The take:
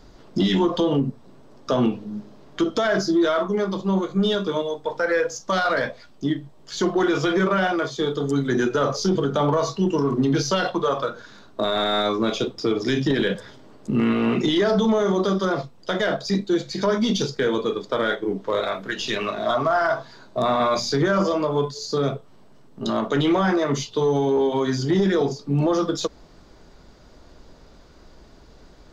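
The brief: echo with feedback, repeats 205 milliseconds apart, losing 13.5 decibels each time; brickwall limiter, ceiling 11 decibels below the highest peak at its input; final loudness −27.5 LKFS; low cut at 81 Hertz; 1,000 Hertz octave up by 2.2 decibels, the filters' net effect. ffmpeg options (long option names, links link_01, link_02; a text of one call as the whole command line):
ffmpeg -i in.wav -af "highpass=81,equalizer=frequency=1000:width_type=o:gain=3,alimiter=limit=-20.5dB:level=0:latency=1,aecho=1:1:205|410:0.211|0.0444,volume=1.5dB" out.wav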